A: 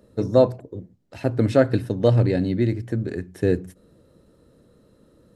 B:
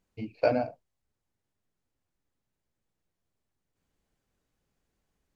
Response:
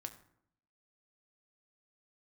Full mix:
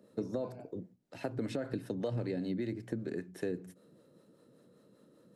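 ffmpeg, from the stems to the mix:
-filter_complex "[0:a]highpass=frequency=140:width=0.5412,highpass=frequency=140:width=1.3066,alimiter=limit=-13dB:level=0:latency=1:release=40,acrossover=split=450[link_01][link_02];[link_01]aeval=exprs='val(0)*(1-0.5/2+0.5/2*cos(2*PI*5.1*n/s))':channel_layout=same[link_03];[link_02]aeval=exprs='val(0)*(1-0.5/2-0.5/2*cos(2*PI*5.1*n/s))':channel_layout=same[link_04];[link_03][link_04]amix=inputs=2:normalize=0,volume=-3.5dB,asplit=2[link_05][link_06];[1:a]volume=-16dB[link_07];[link_06]apad=whole_len=236197[link_08];[link_07][link_08]sidechaincompress=threshold=-39dB:ratio=8:attack=41:release=351[link_09];[link_05][link_09]amix=inputs=2:normalize=0,acompressor=threshold=-32dB:ratio=6"

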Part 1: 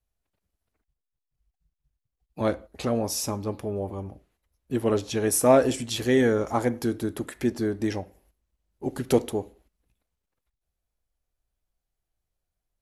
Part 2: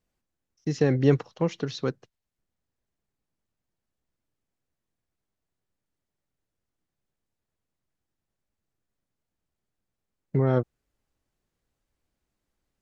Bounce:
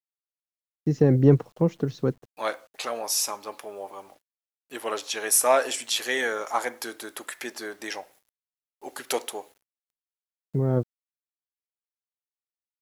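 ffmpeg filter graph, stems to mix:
ffmpeg -i stem1.wav -i stem2.wav -filter_complex "[0:a]highpass=910,volume=-0.5dB,asplit=2[link_01][link_02];[1:a]equalizer=frequency=3600:width=0.37:gain=-15,adelay=200,volume=-0.5dB[link_03];[link_02]apad=whole_len=573963[link_04];[link_03][link_04]sidechaincompress=threshold=-50dB:ratio=8:attack=9.4:release=1230[link_05];[link_01][link_05]amix=inputs=2:normalize=0,acontrast=37,acrusher=bits=9:mix=0:aa=0.000001" out.wav

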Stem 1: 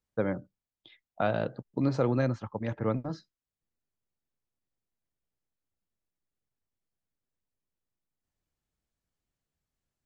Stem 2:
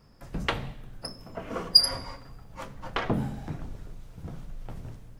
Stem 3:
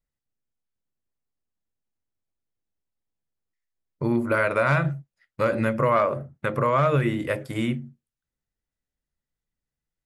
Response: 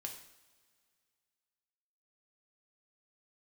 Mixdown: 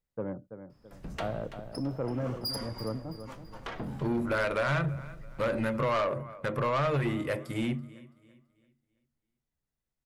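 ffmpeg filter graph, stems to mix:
-filter_complex "[0:a]lowpass=1100,volume=-4.5dB,asplit=2[link_01][link_02];[link_02]volume=-11.5dB[link_03];[1:a]asoftclip=type=tanh:threshold=-22.5dB,adelay=700,volume=-7dB,asplit=2[link_04][link_05];[link_05]volume=-12.5dB[link_06];[2:a]volume=-3dB,asplit=2[link_07][link_08];[link_08]volume=-22.5dB[link_09];[link_03][link_06][link_09]amix=inputs=3:normalize=0,aecho=0:1:332|664|996|1328|1660:1|0.35|0.122|0.0429|0.015[link_10];[link_01][link_04][link_07][link_10]amix=inputs=4:normalize=0,asoftclip=type=tanh:threshold=-23.5dB"

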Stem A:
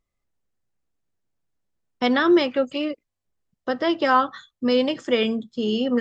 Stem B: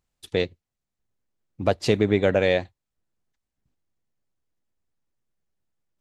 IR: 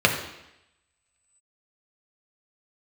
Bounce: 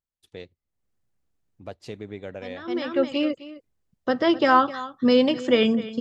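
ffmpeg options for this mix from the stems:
-filter_complex "[0:a]equalizer=frequency=71:width=0.3:gain=5,adelay=400,volume=0.5dB,asplit=2[link_01][link_02];[link_02]volume=-16.5dB[link_03];[1:a]volume=-16.5dB,asplit=2[link_04][link_05];[link_05]apad=whole_len=282661[link_06];[link_01][link_06]sidechaincompress=threshold=-54dB:ratio=16:attack=10:release=327[link_07];[link_03]aecho=0:1:258:1[link_08];[link_07][link_04][link_08]amix=inputs=3:normalize=0"

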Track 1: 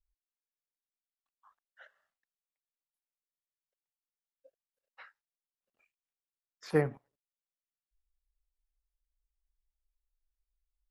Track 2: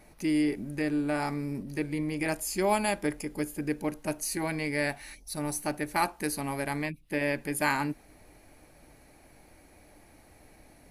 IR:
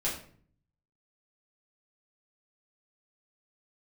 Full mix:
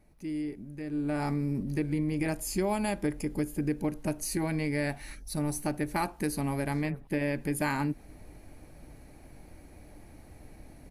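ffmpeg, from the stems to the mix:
-filter_complex "[0:a]alimiter=limit=-23dB:level=0:latency=1:release=138,adelay=100,volume=1.5dB[link_01];[1:a]lowshelf=frequency=350:gain=11,volume=-1.5dB,afade=type=in:start_time=0.87:duration=0.43:silence=0.237137,asplit=2[link_02][link_03];[link_03]apad=whole_len=489953[link_04];[link_01][link_04]sidechaincompress=threshold=-39dB:ratio=3:attack=16:release=629[link_05];[link_05][link_02]amix=inputs=2:normalize=0,acompressor=threshold=-27dB:ratio=2.5"

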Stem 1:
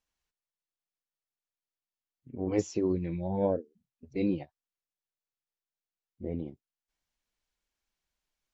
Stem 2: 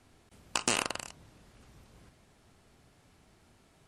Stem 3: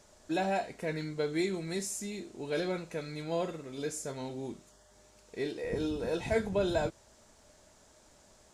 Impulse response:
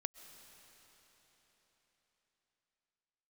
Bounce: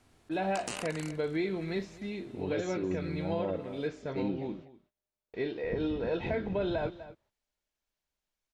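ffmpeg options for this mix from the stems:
-filter_complex "[0:a]volume=-3dB,asplit=3[link_01][link_02][link_03];[link_02]volume=-14.5dB[link_04];[1:a]alimiter=limit=-18.5dB:level=0:latency=1:release=64,volume=-2dB,asplit=2[link_05][link_06];[link_06]volume=-19.5dB[link_07];[2:a]lowpass=frequency=3600:width=0.5412,lowpass=frequency=3600:width=1.3066,agate=range=-38dB:threshold=-51dB:ratio=16:detection=peak,dynaudnorm=framelen=130:gausssize=5:maxgain=11dB,volume=-9dB,asplit=2[link_08][link_09];[link_09]volume=-18.5dB[link_10];[link_03]apad=whole_len=170963[link_11];[link_05][link_11]sidechaincompress=threshold=-34dB:ratio=8:attack=16:release=358[link_12];[link_04][link_07][link_10]amix=inputs=3:normalize=0,aecho=0:1:247:1[link_13];[link_01][link_12][link_08][link_13]amix=inputs=4:normalize=0,alimiter=limit=-22.5dB:level=0:latency=1:release=151"

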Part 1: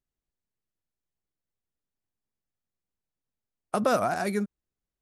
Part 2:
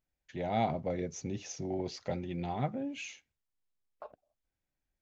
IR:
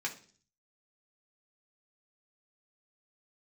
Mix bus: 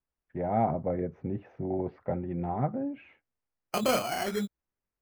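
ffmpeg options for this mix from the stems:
-filter_complex "[0:a]flanger=delay=15.5:depth=7.9:speed=0.89,acrusher=samples=12:mix=1:aa=0.000001,volume=0.5dB[link_01];[1:a]agate=range=-33dB:threshold=-47dB:ratio=3:detection=peak,lowpass=frequency=1600:width=0.5412,lowpass=frequency=1600:width=1.3066,acontrast=28,volume=-1dB,asplit=2[link_02][link_03];[link_03]apad=whole_len=220942[link_04];[link_01][link_04]sidechaincompress=threshold=-46dB:ratio=3:attack=6.2:release=121[link_05];[link_05][link_02]amix=inputs=2:normalize=0"

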